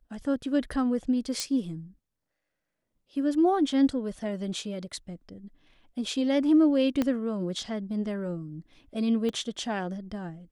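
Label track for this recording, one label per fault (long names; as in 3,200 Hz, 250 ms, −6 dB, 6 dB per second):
1.400000	1.400000	click −14 dBFS
7.020000	7.020000	click −14 dBFS
9.290000	9.290000	click −21 dBFS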